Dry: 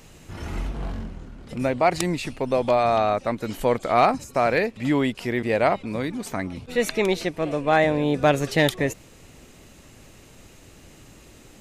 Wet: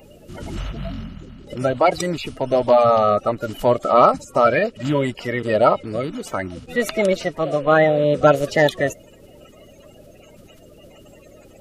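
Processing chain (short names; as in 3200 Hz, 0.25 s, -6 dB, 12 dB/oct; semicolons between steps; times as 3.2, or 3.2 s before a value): bin magnitudes rounded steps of 30 dB; small resonant body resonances 600/1300/2900 Hz, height 10 dB, ringing for 30 ms; gain +1 dB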